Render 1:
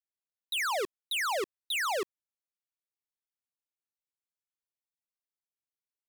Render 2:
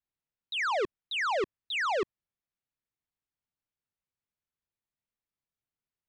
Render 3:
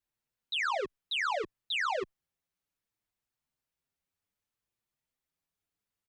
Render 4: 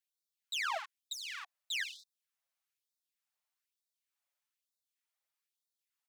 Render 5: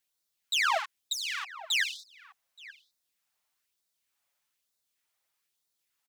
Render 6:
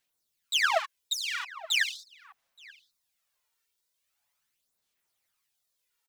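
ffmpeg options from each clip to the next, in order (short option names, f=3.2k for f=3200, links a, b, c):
-af "lowpass=f=7.3k:w=0.5412,lowpass=f=7.3k:w=1.3066,bass=f=250:g=10,treble=f=4k:g=-11,volume=2dB"
-filter_complex "[0:a]alimiter=level_in=8dB:limit=-24dB:level=0:latency=1,volume=-8dB,asplit=2[a][b];[b]adelay=6.4,afreqshift=0.66[c];[a][c]amix=inputs=2:normalize=1,volume=6.5dB"
-af "aeval=exprs='clip(val(0),-1,0.00596)':c=same,afftfilt=real='re*gte(b*sr/1024,480*pow(3600/480,0.5+0.5*sin(2*PI*1.1*pts/sr)))':imag='im*gte(b*sr/1024,480*pow(3600/480,0.5+0.5*sin(2*PI*1.1*pts/sr)))':win_size=1024:overlap=0.75"
-filter_complex "[0:a]asplit=2[a][b];[b]adelay=874.6,volume=-15dB,highshelf=f=4k:g=-19.7[c];[a][c]amix=inputs=2:normalize=0,volume=9dB"
-af "aphaser=in_gain=1:out_gain=1:delay=2.2:decay=0.47:speed=0.41:type=sinusoidal"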